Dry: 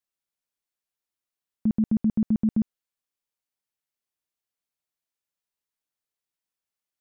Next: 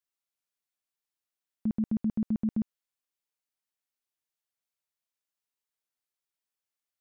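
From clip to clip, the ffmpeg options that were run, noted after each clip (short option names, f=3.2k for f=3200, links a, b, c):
-af "lowshelf=f=430:g=-5,volume=-2dB"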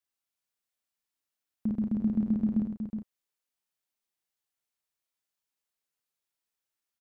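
-filter_complex "[0:a]asplit=2[a][b];[b]adelay=34,volume=-8.5dB[c];[a][c]amix=inputs=2:normalize=0,asplit=2[d][e];[e]aecho=0:1:43|367|377:0.316|0.473|0.119[f];[d][f]amix=inputs=2:normalize=0"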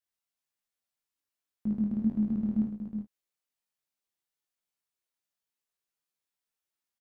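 -filter_complex "[0:a]flanger=delay=19.5:depth=5.7:speed=1.8,asplit=2[a][b];[b]adelay=14,volume=-8dB[c];[a][c]amix=inputs=2:normalize=0"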